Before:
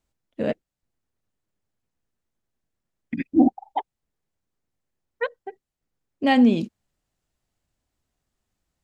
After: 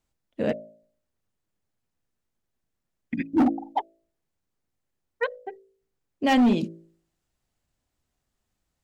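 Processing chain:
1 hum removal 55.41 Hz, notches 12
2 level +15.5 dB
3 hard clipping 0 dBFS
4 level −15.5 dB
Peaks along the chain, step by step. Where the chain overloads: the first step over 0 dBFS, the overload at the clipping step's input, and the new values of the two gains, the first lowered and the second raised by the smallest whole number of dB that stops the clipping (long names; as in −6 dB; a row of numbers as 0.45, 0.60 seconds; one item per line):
−6.0, +9.5, 0.0, −15.5 dBFS
step 2, 9.5 dB
step 2 +5.5 dB, step 4 −5.5 dB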